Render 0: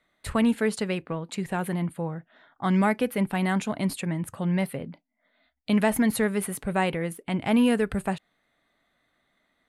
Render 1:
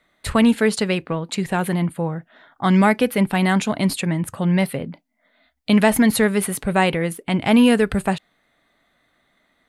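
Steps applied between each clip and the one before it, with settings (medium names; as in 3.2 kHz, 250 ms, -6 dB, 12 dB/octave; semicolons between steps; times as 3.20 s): dynamic bell 4.3 kHz, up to +4 dB, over -48 dBFS, Q 0.96; trim +7 dB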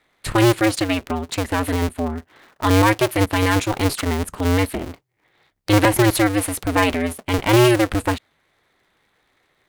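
cycle switcher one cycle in 2, inverted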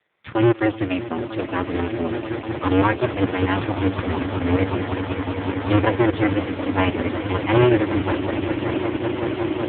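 echo with a slow build-up 188 ms, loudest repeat 8, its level -12 dB; bit crusher 12-bit; trim -1 dB; AMR-NB 4.75 kbps 8 kHz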